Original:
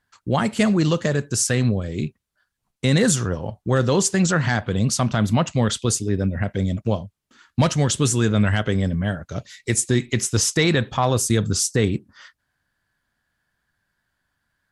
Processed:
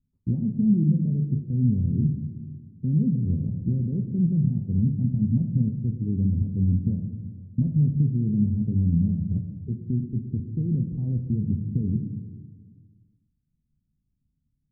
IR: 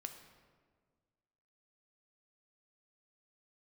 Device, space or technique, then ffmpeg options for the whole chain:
club heard from the street: -filter_complex "[0:a]alimiter=limit=-16dB:level=0:latency=1:release=238,lowpass=frequency=240:width=0.5412,lowpass=frequency=240:width=1.3066[link_01];[1:a]atrim=start_sample=2205[link_02];[link_01][link_02]afir=irnorm=-1:irlink=0,volume=8.5dB"

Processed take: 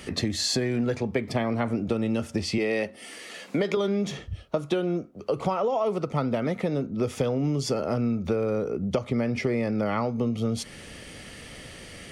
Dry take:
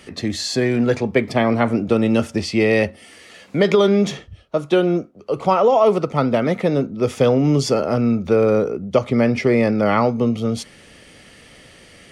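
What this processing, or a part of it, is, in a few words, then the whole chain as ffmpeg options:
ASMR close-microphone chain: -filter_complex "[0:a]asettb=1/sr,asplit=3[link_01][link_02][link_03];[link_01]atrim=end=2.584[link_04];[link_02]atrim=start=2.58:end=3.77,asetpts=PTS-STARTPTS,afade=type=in:duration=0.004:curve=qsin,afade=type=out:start_time=1.186:duration=0.004:curve=qsin,highpass=220[link_05];[link_03]atrim=start=3.766[link_06];[link_04][link_05]acrossfade=duration=0.004:curve1=hsin:curve2=qsin[link_07];[link_07][link_06]acrossfade=duration=0.004:curve1=qsin:curve2=hsin,lowshelf=frequency=150:gain=5,acompressor=threshold=-25dB:ratio=6,highshelf=frequency=8800:gain=4,volume=1.5dB"

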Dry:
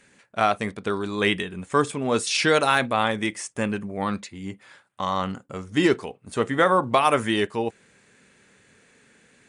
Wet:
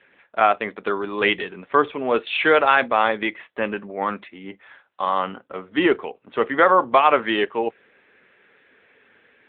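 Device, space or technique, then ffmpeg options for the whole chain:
telephone: -filter_complex "[0:a]asettb=1/sr,asplit=3[link_01][link_02][link_03];[link_01]atrim=end=4.254[link_04];[link_02]atrim=start=4.25:end=5.01,asetpts=PTS-STARTPTS,afade=type=in:duration=0.004:curve=qsin,afade=type=out:start_time=0.756:duration=0.004:curve=qsin,adynamicequalizer=threshold=0.00316:dfrequency=180:dqfactor=4:tfrequency=180:tqfactor=4:attack=5:release=100:ratio=0.375:range=1.5:mode=cutabove:tftype=bell[link_05];[link_03]atrim=start=5.006[link_06];[link_04][link_05]acrossfade=duration=0.004:curve1=hsin:curve2=qsin[link_07];[link_07][link_06]acrossfade=duration=0.004:curve1=qsin:curve2=hsin,highpass=360,lowpass=3600,volume=5dB" -ar 8000 -c:a libopencore_amrnb -b:a 10200

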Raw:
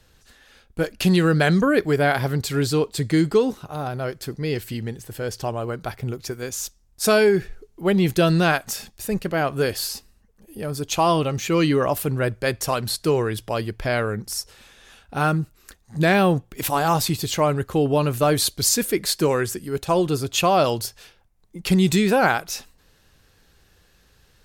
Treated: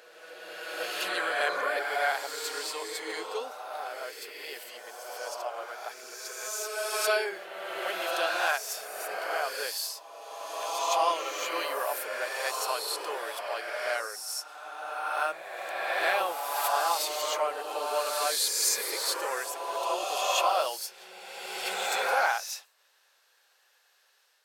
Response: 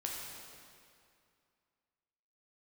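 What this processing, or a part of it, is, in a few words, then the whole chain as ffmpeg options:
ghost voice: -filter_complex "[0:a]areverse[link_01];[1:a]atrim=start_sample=2205[link_02];[link_01][link_02]afir=irnorm=-1:irlink=0,areverse,highpass=frequency=600:width=0.5412,highpass=frequency=600:width=1.3066,volume=-5.5dB"

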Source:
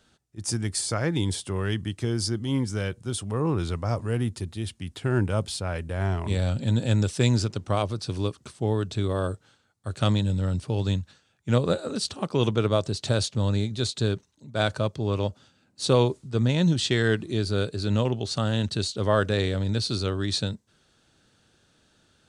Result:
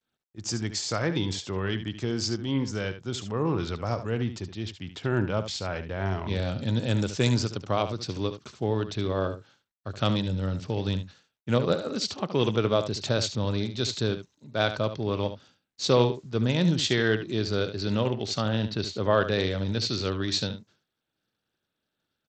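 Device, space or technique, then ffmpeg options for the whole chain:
Bluetooth headset: -filter_complex "[0:a]agate=range=-33dB:threshold=-51dB:ratio=3:detection=peak,asettb=1/sr,asplit=3[link_01][link_02][link_03];[link_01]atrim=end=18.484[link_04];[link_02]atrim=start=18.48:end=19.11,asetpts=PTS-STARTPTS,afade=type=in:duration=0.004:curve=qsin,afade=type=out:start_time=0.626:duration=0.004:curve=qsin,aemphasis=mode=reproduction:type=50fm[link_05];[link_03]atrim=start=19.106[link_06];[link_04][link_05]acrossfade=duration=0.004:curve1=hsin:curve2=qsin[link_07];[link_07][link_06]acrossfade=duration=0.004:curve1=qsin:curve2=hsin,highpass=frequency=150:poles=1,aecho=1:1:73:0.282,aresample=16000,aresample=44100" -ar 32000 -c:a sbc -b:a 64k

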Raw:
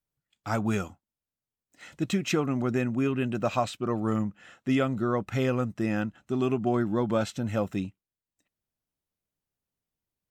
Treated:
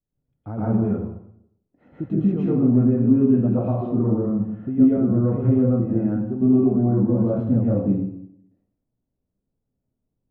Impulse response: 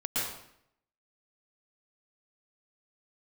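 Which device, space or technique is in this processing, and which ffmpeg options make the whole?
television next door: -filter_complex "[0:a]acompressor=threshold=-29dB:ratio=6,lowpass=460[link_01];[1:a]atrim=start_sample=2205[link_02];[link_01][link_02]afir=irnorm=-1:irlink=0,volume=6.5dB"

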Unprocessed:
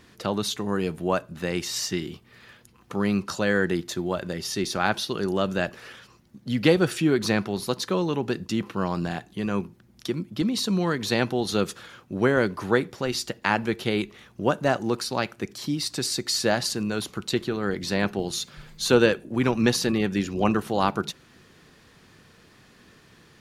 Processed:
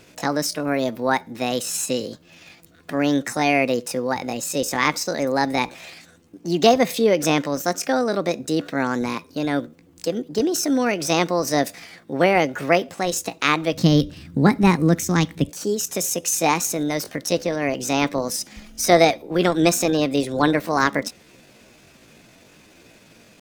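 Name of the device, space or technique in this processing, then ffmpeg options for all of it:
chipmunk voice: -filter_complex "[0:a]asetrate=62367,aresample=44100,atempo=0.707107,asplit=3[link_01][link_02][link_03];[link_01]afade=type=out:start_time=13.73:duration=0.02[link_04];[link_02]asubboost=boost=8.5:cutoff=210,afade=type=in:start_time=13.73:duration=0.02,afade=type=out:start_time=15.49:duration=0.02[link_05];[link_03]afade=type=in:start_time=15.49:duration=0.02[link_06];[link_04][link_05][link_06]amix=inputs=3:normalize=0,volume=4dB"

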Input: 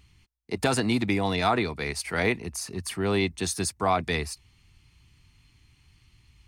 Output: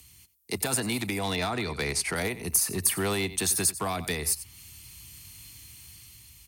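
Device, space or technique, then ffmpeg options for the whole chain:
FM broadcast chain: -filter_complex "[0:a]asettb=1/sr,asplit=3[link_01][link_02][link_03];[link_01]atrim=end=1.194[link_04];[link_02]atrim=start=1.19:end=2.16,asetpts=PTS-STARTPTS,afade=type=in:duration=0.004:curve=qsin,afade=type=out:start_time=0.966:duration=0.004:curve=qsin,lowpass=6900[link_05];[link_03]atrim=start=2.156[link_06];[link_04][link_05]acrossfade=duration=0.004:curve1=hsin:curve2=qsin[link_07];[link_07][link_06]acrossfade=duration=0.004:curve1=qsin:curve2=hsin,highpass=frequency=51:width=0.5412,highpass=frequency=51:width=1.3066,aecho=1:1:90:0.119,dynaudnorm=framelen=450:gausssize=5:maxgain=7dB,acrossover=split=220|450|1200|2800[link_08][link_09][link_10][link_11][link_12];[link_08]acompressor=threshold=-31dB:ratio=4[link_13];[link_09]acompressor=threshold=-35dB:ratio=4[link_14];[link_10]acompressor=threshold=-30dB:ratio=4[link_15];[link_11]acompressor=threshold=-34dB:ratio=4[link_16];[link_12]acompressor=threshold=-43dB:ratio=4[link_17];[link_13][link_14][link_15][link_16][link_17]amix=inputs=5:normalize=0,aemphasis=mode=production:type=50fm,alimiter=limit=-19dB:level=0:latency=1:release=302,asoftclip=type=hard:threshold=-22dB,lowpass=frequency=15000:width=0.5412,lowpass=frequency=15000:width=1.3066,aemphasis=mode=production:type=50fm"

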